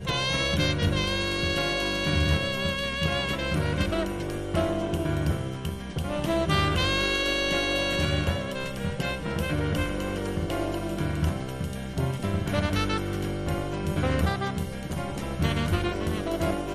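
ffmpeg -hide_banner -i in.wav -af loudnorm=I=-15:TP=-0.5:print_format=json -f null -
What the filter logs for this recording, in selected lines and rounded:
"input_i" : "-27.4",
"input_tp" : "-10.6",
"input_lra" : "3.3",
"input_thresh" : "-37.4",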